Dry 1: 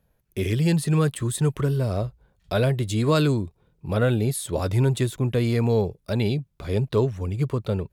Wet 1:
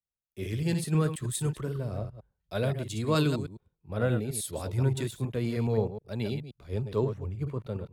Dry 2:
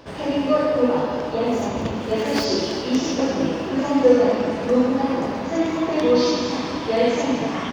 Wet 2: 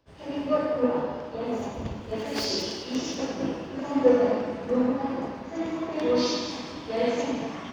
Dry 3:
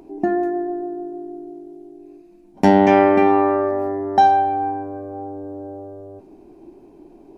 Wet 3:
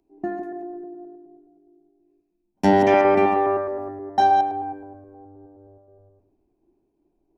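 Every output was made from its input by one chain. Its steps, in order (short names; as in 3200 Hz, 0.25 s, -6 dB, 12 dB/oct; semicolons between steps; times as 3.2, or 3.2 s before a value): reverse delay 0.105 s, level -7 dB; three-band expander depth 70%; gain -8 dB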